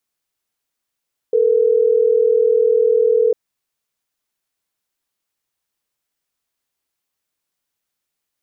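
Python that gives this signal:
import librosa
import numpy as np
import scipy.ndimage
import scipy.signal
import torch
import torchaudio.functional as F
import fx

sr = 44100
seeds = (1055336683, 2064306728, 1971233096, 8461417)

y = fx.call_progress(sr, length_s=3.12, kind='ringback tone', level_db=-14.0)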